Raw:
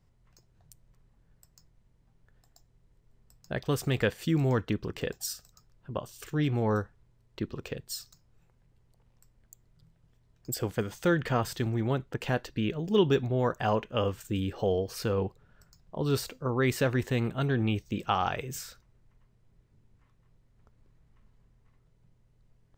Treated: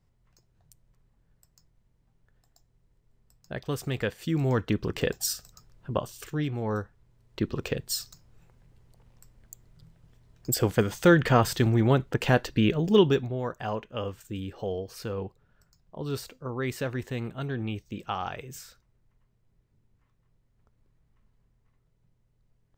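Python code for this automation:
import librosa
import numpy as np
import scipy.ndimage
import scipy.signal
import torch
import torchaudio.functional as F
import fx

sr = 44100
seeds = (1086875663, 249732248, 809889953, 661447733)

y = fx.gain(x, sr, db=fx.line((4.18, -2.5), (4.96, 6.0), (6.03, 6.0), (6.55, -4.0), (7.58, 7.0), (12.86, 7.0), (13.4, -4.5)))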